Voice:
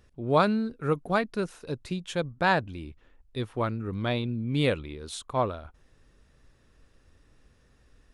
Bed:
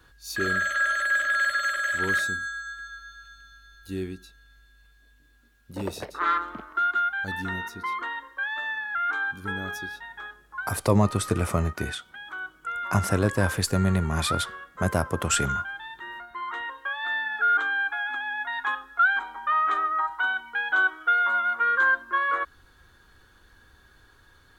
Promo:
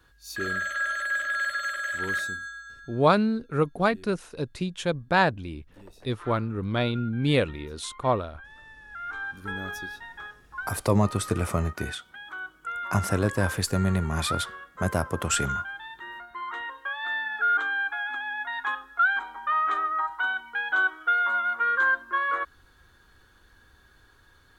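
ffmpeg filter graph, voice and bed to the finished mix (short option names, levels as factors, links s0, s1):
-filter_complex "[0:a]adelay=2700,volume=1.33[s0];[1:a]volume=4.47,afade=t=out:st=2.29:d=0.93:silence=0.188365,afade=t=in:st=8.8:d=0.82:silence=0.141254[s1];[s0][s1]amix=inputs=2:normalize=0"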